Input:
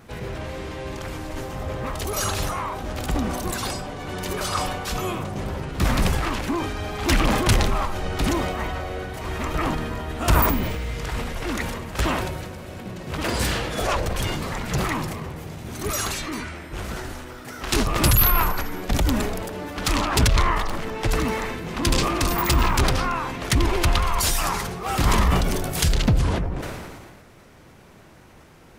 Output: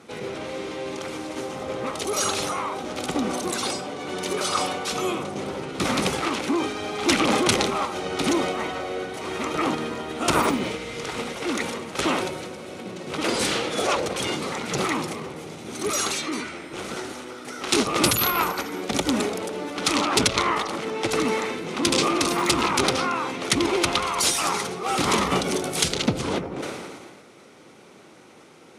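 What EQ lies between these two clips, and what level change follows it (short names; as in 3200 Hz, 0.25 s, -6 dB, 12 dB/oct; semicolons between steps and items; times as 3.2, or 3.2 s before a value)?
speaker cabinet 280–10000 Hz, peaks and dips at 660 Hz -6 dB, 1000 Hz -6 dB, 1700 Hz -9 dB, 2800 Hz -3 dB, 4800 Hz -3 dB, 7500 Hz -4 dB; +5.0 dB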